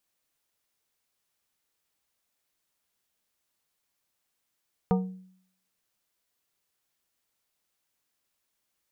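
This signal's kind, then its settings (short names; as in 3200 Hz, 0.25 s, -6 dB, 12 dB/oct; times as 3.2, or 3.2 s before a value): glass hit plate, lowest mode 186 Hz, decay 0.64 s, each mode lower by 4 dB, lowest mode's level -19 dB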